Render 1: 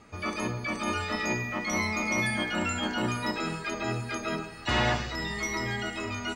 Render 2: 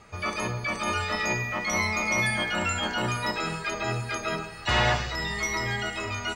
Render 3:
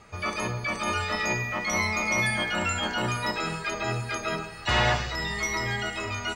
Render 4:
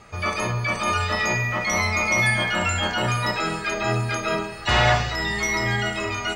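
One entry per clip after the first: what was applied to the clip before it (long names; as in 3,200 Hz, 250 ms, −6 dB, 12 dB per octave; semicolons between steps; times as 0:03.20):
parametric band 270 Hz −11.5 dB 0.62 octaves; level +3.5 dB
no processing that can be heard
convolution reverb, pre-delay 34 ms, DRR 7 dB; level +4 dB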